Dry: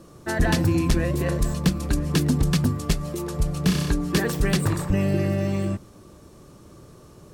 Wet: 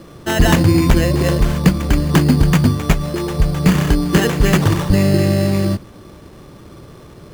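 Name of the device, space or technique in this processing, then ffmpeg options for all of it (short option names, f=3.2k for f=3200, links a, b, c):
crushed at another speed: -af "asetrate=22050,aresample=44100,acrusher=samples=19:mix=1:aa=0.000001,asetrate=88200,aresample=44100,volume=8.5dB"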